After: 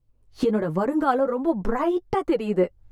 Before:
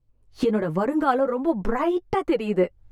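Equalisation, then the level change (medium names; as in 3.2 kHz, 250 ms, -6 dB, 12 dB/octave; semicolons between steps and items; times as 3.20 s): dynamic bell 2.4 kHz, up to -4 dB, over -47 dBFS, Q 1.5; 0.0 dB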